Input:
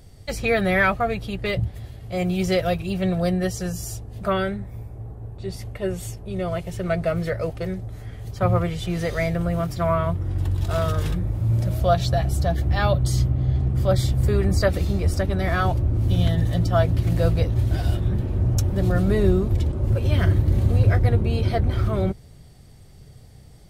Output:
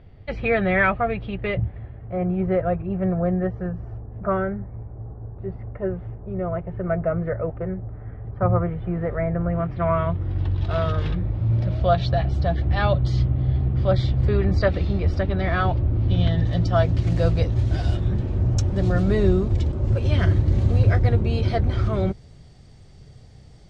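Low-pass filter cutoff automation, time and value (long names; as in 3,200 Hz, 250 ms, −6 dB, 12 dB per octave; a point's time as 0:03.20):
low-pass filter 24 dB per octave
0:01.38 2,900 Hz
0:02.21 1,600 Hz
0:09.32 1,600 Hz
0:10.24 4,100 Hz
0:16.10 4,100 Hz
0:17.00 7,100 Hz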